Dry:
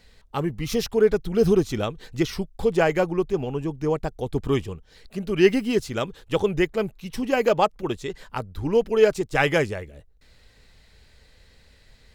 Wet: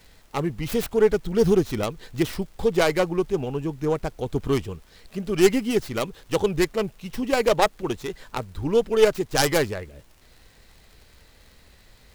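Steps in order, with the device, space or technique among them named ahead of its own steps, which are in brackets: record under a worn stylus (tracing distortion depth 0.43 ms; crackle; pink noise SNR 35 dB)

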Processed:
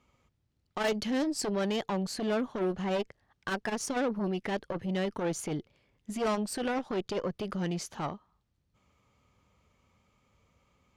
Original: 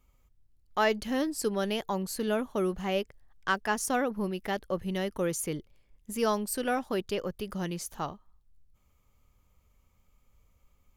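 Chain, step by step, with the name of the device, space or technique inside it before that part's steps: valve radio (BPF 110–5300 Hz; tube stage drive 30 dB, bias 0.25; core saturation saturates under 270 Hz); 0.88–1.51 tone controls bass +1 dB, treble +4 dB; gain +6 dB

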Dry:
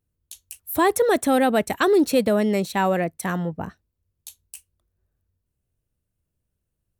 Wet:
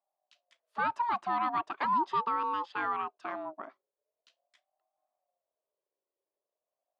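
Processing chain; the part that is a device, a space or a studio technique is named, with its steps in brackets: voice changer toy (ring modulator with a swept carrier 580 Hz, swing 20%, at 0.41 Hz; speaker cabinet 440–3700 Hz, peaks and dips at 480 Hz -8 dB, 1100 Hz +4 dB, 2200 Hz -7 dB, 3500 Hz -5 dB); gain -7 dB

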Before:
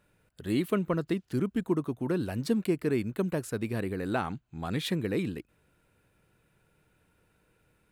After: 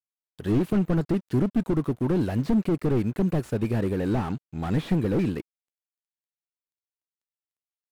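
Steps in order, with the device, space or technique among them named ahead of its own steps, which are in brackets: early transistor amplifier (crossover distortion -58 dBFS; slew limiter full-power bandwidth 12 Hz); gain +8 dB

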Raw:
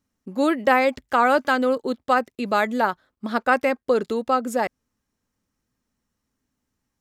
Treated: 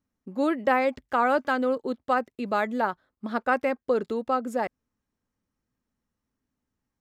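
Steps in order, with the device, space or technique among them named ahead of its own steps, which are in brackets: behind a face mask (high shelf 3000 Hz -8 dB); gain -4 dB

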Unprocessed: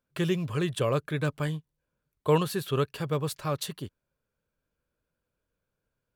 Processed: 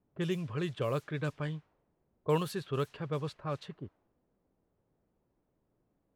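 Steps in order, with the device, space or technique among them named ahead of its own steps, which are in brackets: cassette deck with a dynamic noise filter (white noise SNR 23 dB; low-pass opened by the level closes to 350 Hz, open at -22 dBFS); gain -6 dB

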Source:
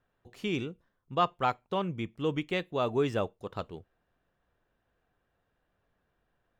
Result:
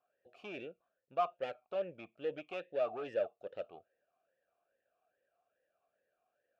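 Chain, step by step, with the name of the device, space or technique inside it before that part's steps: talk box (tube stage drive 29 dB, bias 0.35; vowel sweep a-e 2.4 Hz); gain +7 dB

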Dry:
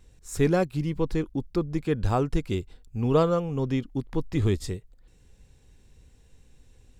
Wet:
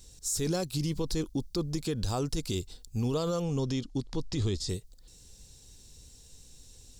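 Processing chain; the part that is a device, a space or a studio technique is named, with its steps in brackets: over-bright horn tweeter (resonant high shelf 3200 Hz +13.5 dB, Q 1.5; limiter -21.5 dBFS, peak gain reduction 11.5 dB); 3.41–4.68 LPF 8900 Hz -> 5300 Hz 12 dB/oct

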